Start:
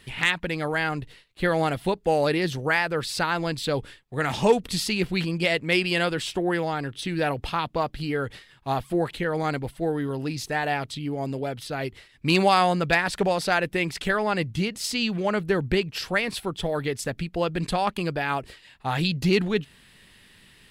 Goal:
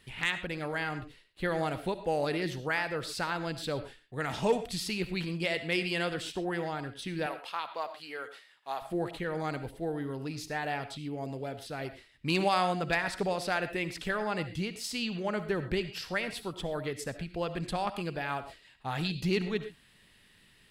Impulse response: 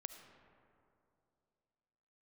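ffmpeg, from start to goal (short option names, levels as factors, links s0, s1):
-filter_complex "[0:a]asettb=1/sr,asplit=3[s0][s1][s2];[s0]atrim=end=7.264[s3];[s1]atrim=start=7.26:end=8.82,asetpts=PTS-STARTPTS,afade=t=in:d=0.004:c=qsin,afade=t=out:st=1.556:d=0.004:c=qsin,highpass=610[s4];[s2]atrim=start=8.816[s5];[s3][s4]acrossfade=d=0.004:c1=hsin:c2=qsin[s6];[s6][s5]acrossfade=d=0.004:c1=qsin:c2=hsin[s7];[1:a]atrim=start_sample=2205,atrim=end_sample=6174[s8];[s7][s8]afir=irnorm=-1:irlink=0,volume=0.708"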